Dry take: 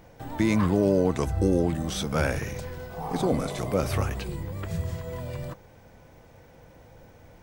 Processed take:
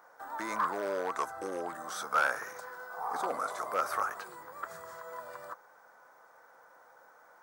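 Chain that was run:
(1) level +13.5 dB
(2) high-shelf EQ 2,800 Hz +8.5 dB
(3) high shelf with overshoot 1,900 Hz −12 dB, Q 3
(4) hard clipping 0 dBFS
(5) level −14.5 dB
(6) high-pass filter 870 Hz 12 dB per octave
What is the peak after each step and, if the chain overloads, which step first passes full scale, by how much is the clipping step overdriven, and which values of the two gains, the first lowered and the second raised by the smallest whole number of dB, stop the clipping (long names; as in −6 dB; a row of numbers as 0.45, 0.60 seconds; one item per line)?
+3.0, +3.5, +4.5, 0.0, −14.5, −15.0 dBFS
step 1, 4.5 dB
step 1 +8.5 dB, step 5 −9.5 dB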